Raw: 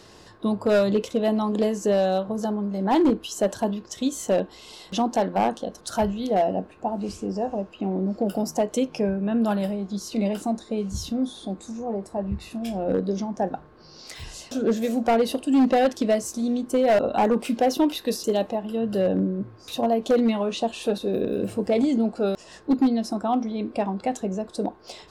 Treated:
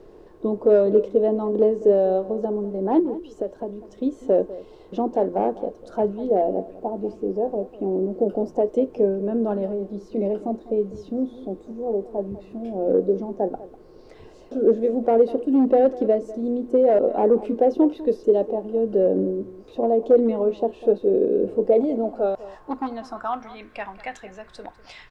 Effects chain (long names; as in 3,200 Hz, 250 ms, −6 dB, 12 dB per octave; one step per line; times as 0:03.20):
0:02.99–0:03.98: downward compressor 5 to 1, threshold −28 dBFS, peak gain reduction 10.5 dB
band-pass filter sweep 410 Hz → 1,900 Hz, 0:21.51–0:23.69
background noise brown −62 dBFS
slap from a distant wall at 34 metres, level −17 dB
level +8 dB